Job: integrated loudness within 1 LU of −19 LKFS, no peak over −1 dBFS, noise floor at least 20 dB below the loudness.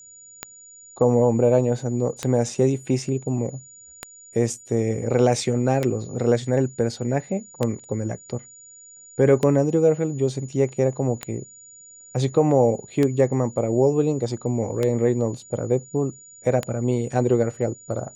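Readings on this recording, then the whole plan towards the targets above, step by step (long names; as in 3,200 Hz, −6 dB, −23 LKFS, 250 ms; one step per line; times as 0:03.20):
number of clicks 10; interfering tone 6,900 Hz; level of the tone −44 dBFS; integrated loudness −22.5 LKFS; sample peak −5.5 dBFS; target loudness −19.0 LKFS
→ click removal
notch filter 6,900 Hz, Q 30
level +3.5 dB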